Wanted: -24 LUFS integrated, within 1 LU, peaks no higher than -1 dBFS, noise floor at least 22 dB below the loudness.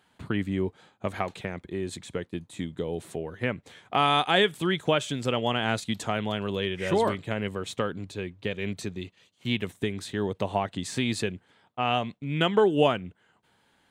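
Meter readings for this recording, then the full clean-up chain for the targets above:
loudness -28.5 LUFS; peak -7.5 dBFS; loudness target -24.0 LUFS
-> gain +4.5 dB

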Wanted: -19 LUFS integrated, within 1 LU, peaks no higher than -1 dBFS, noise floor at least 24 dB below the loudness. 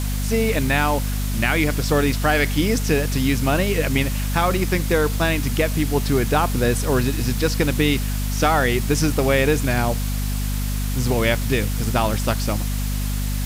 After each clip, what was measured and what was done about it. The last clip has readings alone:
hum 50 Hz; harmonics up to 250 Hz; hum level -21 dBFS; noise floor -23 dBFS; noise floor target -45 dBFS; loudness -21.0 LUFS; peak -5.0 dBFS; loudness target -19.0 LUFS
-> de-hum 50 Hz, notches 5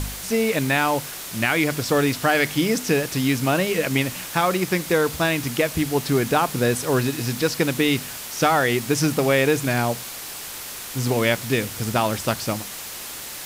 hum none; noise floor -35 dBFS; noise floor target -46 dBFS
-> noise print and reduce 11 dB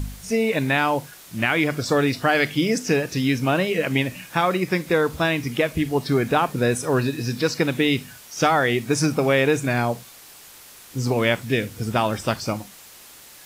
noise floor -46 dBFS; loudness -22.0 LUFS; peak -6.5 dBFS; loudness target -19.0 LUFS
-> gain +3 dB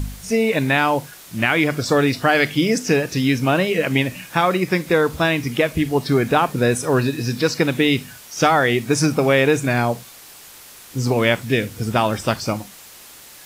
loudness -19.0 LUFS; peak -3.5 dBFS; noise floor -43 dBFS

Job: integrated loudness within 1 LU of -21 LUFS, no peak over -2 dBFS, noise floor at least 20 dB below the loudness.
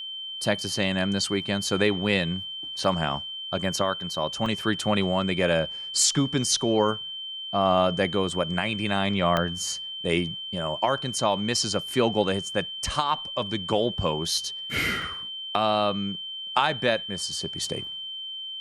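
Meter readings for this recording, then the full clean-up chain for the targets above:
dropouts 5; longest dropout 1.9 ms; steady tone 3100 Hz; tone level -33 dBFS; loudness -26.0 LUFS; peak -8.0 dBFS; loudness target -21.0 LUFS
-> interpolate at 2.84/4.46/9.37/14.37/15.02, 1.9 ms; notch 3100 Hz, Q 30; gain +5 dB

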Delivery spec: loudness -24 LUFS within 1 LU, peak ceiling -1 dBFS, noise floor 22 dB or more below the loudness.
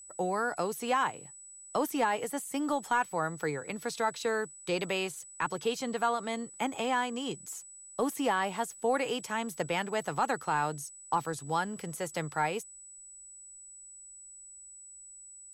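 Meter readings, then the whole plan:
steady tone 7900 Hz; tone level -48 dBFS; loudness -32.5 LUFS; peak -17.0 dBFS; loudness target -24.0 LUFS
-> notch 7900 Hz, Q 30; gain +8.5 dB

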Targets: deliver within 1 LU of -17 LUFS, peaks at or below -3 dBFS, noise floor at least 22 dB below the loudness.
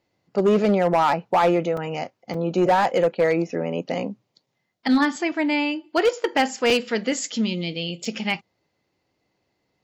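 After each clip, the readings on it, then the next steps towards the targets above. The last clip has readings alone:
clipped 0.9%; flat tops at -12.5 dBFS; dropouts 4; longest dropout 3.4 ms; loudness -22.5 LUFS; peak -12.5 dBFS; loudness target -17.0 LUFS
-> clip repair -12.5 dBFS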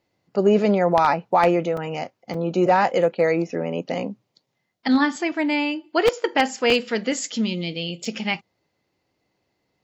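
clipped 0.0%; dropouts 4; longest dropout 3.4 ms
-> interpolate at 1.77/2.34/6.7/8.05, 3.4 ms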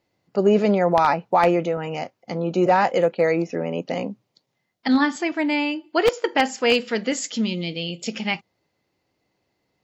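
dropouts 0; loudness -22.0 LUFS; peak -3.5 dBFS; loudness target -17.0 LUFS
-> gain +5 dB; limiter -3 dBFS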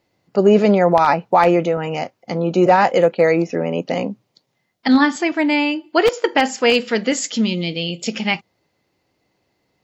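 loudness -17.5 LUFS; peak -3.0 dBFS; noise floor -70 dBFS

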